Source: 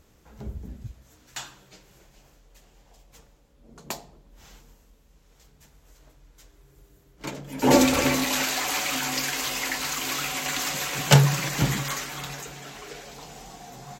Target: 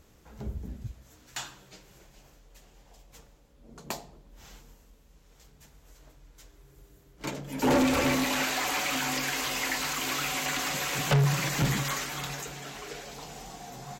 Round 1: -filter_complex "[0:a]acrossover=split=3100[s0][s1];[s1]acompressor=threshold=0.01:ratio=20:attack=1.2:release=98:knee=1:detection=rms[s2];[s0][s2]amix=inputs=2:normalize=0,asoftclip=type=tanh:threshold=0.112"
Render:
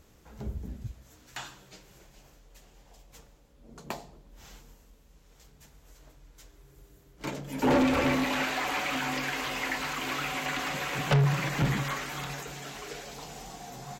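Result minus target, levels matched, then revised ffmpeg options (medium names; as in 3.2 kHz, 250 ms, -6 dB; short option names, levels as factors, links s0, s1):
compression: peak gain reduction +10 dB
-filter_complex "[0:a]acrossover=split=3100[s0][s1];[s1]acompressor=threshold=0.0335:ratio=20:attack=1.2:release=98:knee=1:detection=rms[s2];[s0][s2]amix=inputs=2:normalize=0,asoftclip=type=tanh:threshold=0.112"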